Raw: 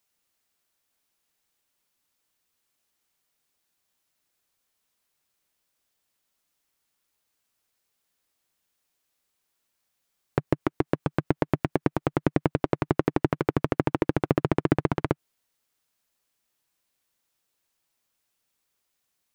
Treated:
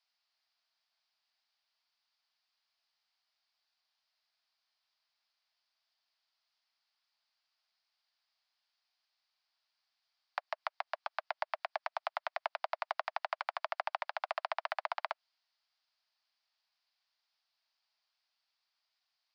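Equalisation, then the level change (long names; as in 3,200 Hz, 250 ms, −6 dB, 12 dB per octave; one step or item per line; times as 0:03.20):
Butterworth high-pass 620 Hz 96 dB per octave
low-pass with resonance 4,800 Hz, resonance Q 4.9
high-frequency loss of the air 160 metres
−3.5 dB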